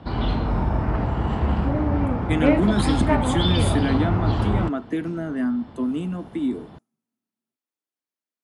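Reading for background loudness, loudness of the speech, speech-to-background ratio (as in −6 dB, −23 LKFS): −23.0 LKFS, −26.0 LKFS, −3.0 dB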